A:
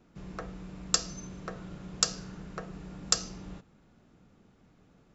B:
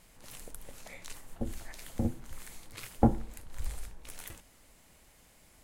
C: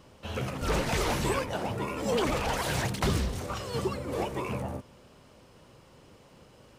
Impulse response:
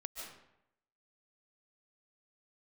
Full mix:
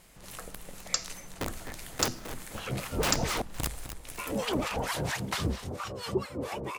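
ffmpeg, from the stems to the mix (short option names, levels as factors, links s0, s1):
-filter_complex "[0:a]equalizer=f=250:t=o:w=1.6:g=-12.5,volume=0.708[s0];[1:a]aeval=exprs='(mod(23.7*val(0)+1,2)-1)/23.7':c=same,volume=1.33,asplit=3[s1][s2][s3];[s2]volume=0.188[s4];[s3]volume=0.335[s5];[2:a]acontrast=72,acrossover=split=840[s6][s7];[s6]aeval=exprs='val(0)*(1-1/2+1/2*cos(2*PI*4.4*n/s))':c=same[s8];[s7]aeval=exprs='val(0)*(1-1/2-1/2*cos(2*PI*4.4*n/s))':c=same[s9];[s8][s9]amix=inputs=2:normalize=0,adelay=2300,volume=0.631,asplit=3[s10][s11][s12];[s10]atrim=end=3.42,asetpts=PTS-STARTPTS,afade=t=out:st=3.416:d=0.004:c=hsin[s13];[s11]atrim=start=3.42:end=4.18,asetpts=PTS-STARTPTS,volume=0[s14];[s12]atrim=start=4.18,asetpts=PTS-STARTPTS,afade=t=in:d=0.004:c=hsin[s15];[s13][s14][s15]concat=n=3:v=0:a=1[s16];[3:a]atrim=start_sample=2205[s17];[s4][s17]afir=irnorm=-1:irlink=0[s18];[s5]aecho=0:1:258|516|774|1032|1290:1|0.34|0.116|0.0393|0.0134[s19];[s0][s1][s16][s18][s19]amix=inputs=5:normalize=0,lowshelf=f=75:g=-5.5"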